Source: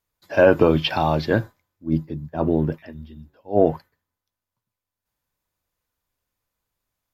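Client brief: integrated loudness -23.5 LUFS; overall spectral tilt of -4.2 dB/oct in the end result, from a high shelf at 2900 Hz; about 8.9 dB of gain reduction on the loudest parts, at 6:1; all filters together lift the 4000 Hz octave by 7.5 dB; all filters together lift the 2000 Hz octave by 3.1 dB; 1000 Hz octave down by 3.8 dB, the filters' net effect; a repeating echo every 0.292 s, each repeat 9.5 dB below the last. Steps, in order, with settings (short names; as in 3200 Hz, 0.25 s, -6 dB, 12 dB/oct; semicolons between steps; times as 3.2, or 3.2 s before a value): bell 1000 Hz -7.5 dB; bell 2000 Hz +5 dB; high shelf 2900 Hz +5.5 dB; bell 4000 Hz +4.5 dB; compressor 6:1, threshold -20 dBFS; feedback echo 0.292 s, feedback 33%, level -9.5 dB; gain +3.5 dB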